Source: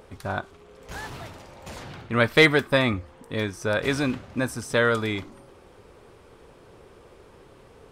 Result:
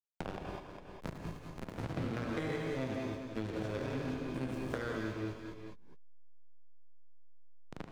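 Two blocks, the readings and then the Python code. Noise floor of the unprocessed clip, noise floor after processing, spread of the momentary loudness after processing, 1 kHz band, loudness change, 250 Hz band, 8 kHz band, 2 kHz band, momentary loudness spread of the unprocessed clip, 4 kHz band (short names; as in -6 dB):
-52 dBFS, -51 dBFS, 11 LU, -13.5 dB, -16.0 dB, -10.0 dB, -18.0 dB, -20.5 dB, 23 LU, -21.0 dB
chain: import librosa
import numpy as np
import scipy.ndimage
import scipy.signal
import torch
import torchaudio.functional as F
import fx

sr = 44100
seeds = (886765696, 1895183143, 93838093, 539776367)

y = fx.spec_steps(x, sr, hold_ms=200)
y = fx.recorder_agc(y, sr, target_db=-13.0, rise_db_per_s=5.4, max_gain_db=30)
y = fx.spec_gate(y, sr, threshold_db=-30, keep='strong')
y = fx.peak_eq(y, sr, hz=400.0, db=3.0, octaves=1.7)
y = fx.resonator_bank(y, sr, root=45, chord='minor', decay_s=0.27)
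y = fx.backlash(y, sr, play_db=-31.5)
y = fx.echo_multitap(y, sr, ms=(74, 199, 405), db=(-10.0, -13.0, -19.0))
y = fx.rev_gated(y, sr, seeds[0], gate_ms=230, shape='rising', drr_db=1.5)
y = fx.band_squash(y, sr, depth_pct=100)
y = F.gain(torch.from_numpy(y), -1.0).numpy()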